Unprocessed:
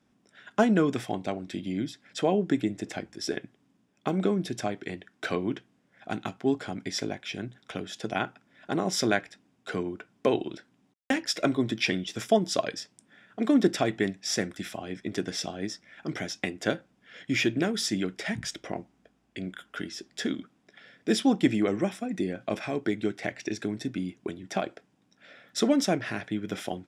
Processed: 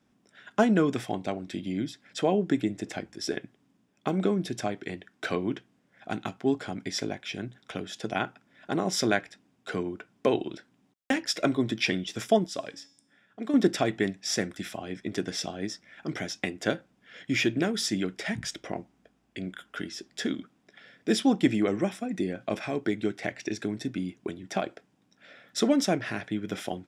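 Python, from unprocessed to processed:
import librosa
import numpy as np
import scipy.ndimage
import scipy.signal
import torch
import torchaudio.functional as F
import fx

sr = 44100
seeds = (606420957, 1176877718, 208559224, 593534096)

y = fx.comb_fb(x, sr, f0_hz=280.0, decay_s=0.65, harmonics='all', damping=0.0, mix_pct=60, at=(12.46, 13.54))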